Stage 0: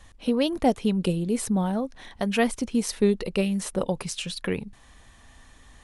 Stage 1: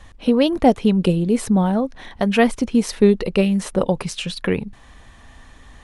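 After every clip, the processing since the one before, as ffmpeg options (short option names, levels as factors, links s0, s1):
-af "highshelf=f=5100:g=-9.5,volume=2.37"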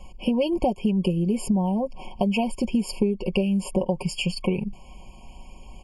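-af "aecho=1:1:5.4:0.7,acompressor=threshold=0.112:ratio=12,afftfilt=real='re*eq(mod(floor(b*sr/1024/1100),2),0)':imag='im*eq(mod(floor(b*sr/1024/1100),2),0)':win_size=1024:overlap=0.75"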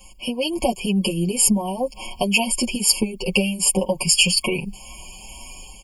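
-filter_complex "[0:a]dynaudnorm=f=350:g=3:m=2.51,crystalizer=i=9.5:c=0,asplit=2[s0][s1];[s1]adelay=7.3,afreqshift=2.1[s2];[s0][s2]amix=inputs=2:normalize=1,volume=0.668"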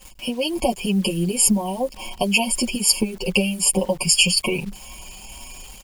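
-af "acrusher=bits=8:dc=4:mix=0:aa=0.000001"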